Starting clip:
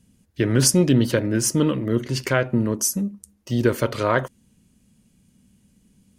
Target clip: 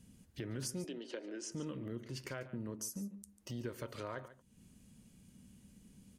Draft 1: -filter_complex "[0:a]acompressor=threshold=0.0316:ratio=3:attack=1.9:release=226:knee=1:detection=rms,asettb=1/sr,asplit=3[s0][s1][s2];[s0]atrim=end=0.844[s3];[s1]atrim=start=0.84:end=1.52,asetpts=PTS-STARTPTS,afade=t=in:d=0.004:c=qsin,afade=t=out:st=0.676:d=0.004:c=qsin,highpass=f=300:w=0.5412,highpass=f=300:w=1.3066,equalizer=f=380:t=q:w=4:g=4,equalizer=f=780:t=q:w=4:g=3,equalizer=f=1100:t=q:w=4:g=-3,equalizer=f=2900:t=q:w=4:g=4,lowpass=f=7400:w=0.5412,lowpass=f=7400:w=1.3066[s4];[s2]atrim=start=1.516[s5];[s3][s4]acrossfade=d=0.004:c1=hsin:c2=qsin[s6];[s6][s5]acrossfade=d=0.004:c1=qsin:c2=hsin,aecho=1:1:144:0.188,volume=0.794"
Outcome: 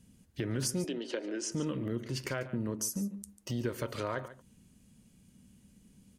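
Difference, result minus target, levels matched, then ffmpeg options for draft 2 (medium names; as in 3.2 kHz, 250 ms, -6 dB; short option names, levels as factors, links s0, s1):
compression: peak gain reduction -8 dB
-filter_complex "[0:a]acompressor=threshold=0.00794:ratio=3:attack=1.9:release=226:knee=1:detection=rms,asettb=1/sr,asplit=3[s0][s1][s2];[s0]atrim=end=0.844[s3];[s1]atrim=start=0.84:end=1.52,asetpts=PTS-STARTPTS,afade=t=in:d=0.004:c=qsin,afade=t=out:st=0.676:d=0.004:c=qsin,highpass=f=300:w=0.5412,highpass=f=300:w=1.3066,equalizer=f=380:t=q:w=4:g=4,equalizer=f=780:t=q:w=4:g=3,equalizer=f=1100:t=q:w=4:g=-3,equalizer=f=2900:t=q:w=4:g=4,lowpass=f=7400:w=0.5412,lowpass=f=7400:w=1.3066[s4];[s2]atrim=start=1.516[s5];[s3][s4]acrossfade=d=0.004:c1=hsin:c2=qsin[s6];[s6][s5]acrossfade=d=0.004:c1=qsin:c2=hsin,aecho=1:1:144:0.188,volume=0.794"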